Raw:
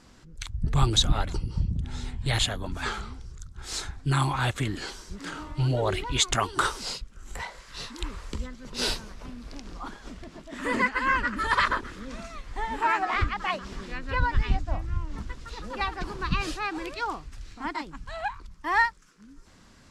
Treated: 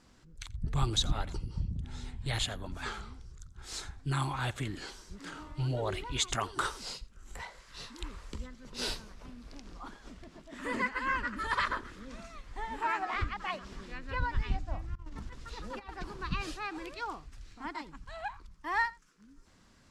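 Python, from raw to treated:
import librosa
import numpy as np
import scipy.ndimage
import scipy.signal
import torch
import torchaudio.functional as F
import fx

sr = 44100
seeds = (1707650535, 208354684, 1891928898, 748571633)

p1 = fx.over_compress(x, sr, threshold_db=-34.0, ratio=-0.5, at=(14.95, 15.89))
p2 = p1 + fx.echo_single(p1, sr, ms=86, db=-22.0, dry=0)
y = F.gain(torch.from_numpy(p2), -7.5).numpy()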